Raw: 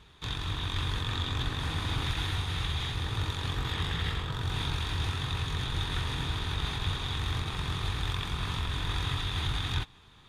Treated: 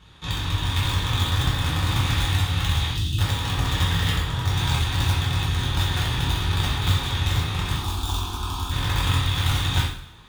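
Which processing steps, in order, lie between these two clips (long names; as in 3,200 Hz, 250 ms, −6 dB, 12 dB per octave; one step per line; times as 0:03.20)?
in parallel at −6 dB: bit reduction 4 bits
0:02.91–0:03.19: on the sum: time-frequency box erased 370–2,500 Hz
0:07.76–0:08.71: phaser with its sweep stopped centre 530 Hz, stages 6
coupled-rooms reverb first 0.59 s, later 1.8 s, from −23 dB, DRR −5.5 dB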